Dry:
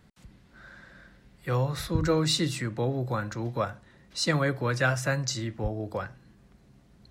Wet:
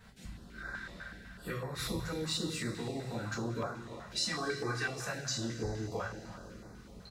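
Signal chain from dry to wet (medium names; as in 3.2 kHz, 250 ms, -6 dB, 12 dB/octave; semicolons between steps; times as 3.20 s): 4.32–4.89 s: comb 2.6 ms, depth 97%; compression 12:1, threshold -38 dBFS, peak gain reduction 21 dB; speakerphone echo 340 ms, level -12 dB; two-slope reverb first 0.35 s, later 4 s, from -18 dB, DRR -7 dB; step-sequenced notch 8 Hz 310–3000 Hz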